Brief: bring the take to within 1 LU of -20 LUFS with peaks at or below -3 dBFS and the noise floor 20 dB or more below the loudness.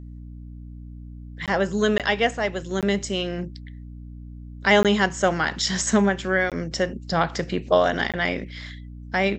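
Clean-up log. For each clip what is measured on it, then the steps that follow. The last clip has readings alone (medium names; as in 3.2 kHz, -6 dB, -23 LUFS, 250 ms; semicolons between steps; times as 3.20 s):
dropouts 6; longest dropout 17 ms; hum 60 Hz; highest harmonic 300 Hz; hum level -36 dBFS; loudness -23.0 LUFS; peak level -4.5 dBFS; loudness target -20.0 LUFS
-> interpolate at 1.46/1.98/2.81/4.83/6.50/8.12 s, 17 ms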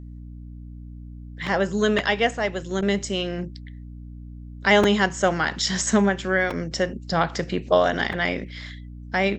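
dropouts 0; hum 60 Hz; highest harmonic 300 Hz; hum level -37 dBFS
-> hum notches 60/120/180/240/300 Hz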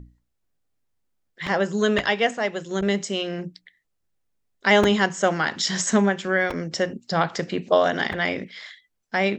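hum not found; loudness -23.0 LUFS; peak level -4.0 dBFS; loudness target -20.0 LUFS
-> trim +3 dB; peak limiter -3 dBFS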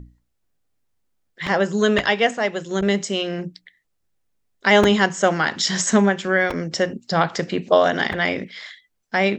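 loudness -20.0 LUFS; peak level -3.0 dBFS; noise floor -72 dBFS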